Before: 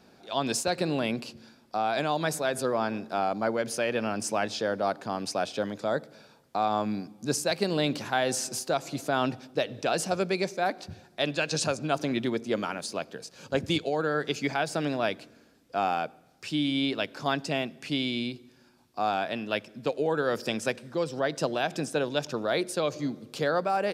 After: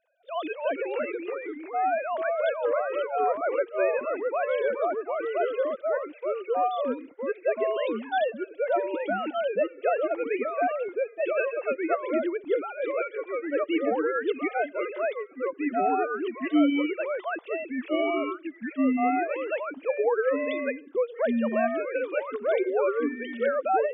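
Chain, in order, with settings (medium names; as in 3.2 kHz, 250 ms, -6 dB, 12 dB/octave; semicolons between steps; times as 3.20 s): formants replaced by sine waves; ever faster or slower copies 225 ms, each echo -2 st, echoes 2; gate -46 dBFS, range -9 dB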